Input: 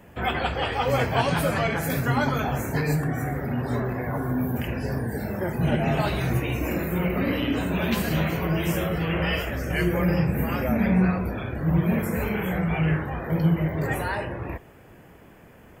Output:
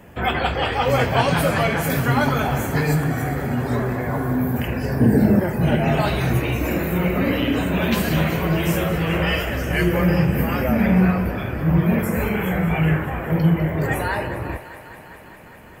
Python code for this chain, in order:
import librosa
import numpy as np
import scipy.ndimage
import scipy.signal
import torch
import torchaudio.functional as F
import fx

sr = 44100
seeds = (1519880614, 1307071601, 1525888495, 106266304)

p1 = fx.peak_eq(x, sr, hz=230.0, db=13.5, octaves=2.4, at=(5.0, 5.4))
p2 = fx.clip_asym(p1, sr, top_db=-15.5, bottom_db=-14.5)
p3 = p1 + (p2 * librosa.db_to_amplitude(-10.0))
p4 = fx.echo_thinned(p3, sr, ms=202, feedback_pct=82, hz=300.0, wet_db=-14.0)
y = p4 * librosa.db_to_amplitude(2.0)